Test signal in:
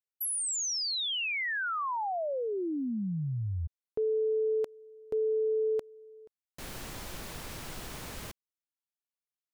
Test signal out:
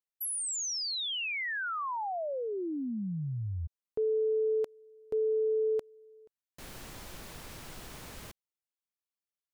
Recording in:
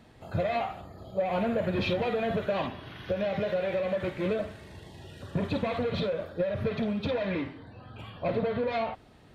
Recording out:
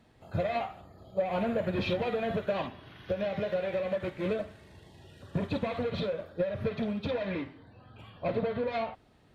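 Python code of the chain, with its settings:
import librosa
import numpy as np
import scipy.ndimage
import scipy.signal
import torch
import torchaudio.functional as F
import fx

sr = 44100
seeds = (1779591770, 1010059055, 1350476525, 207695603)

y = fx.upward_expand(x, sr, threshold_db=-37.0, expansion=1.5)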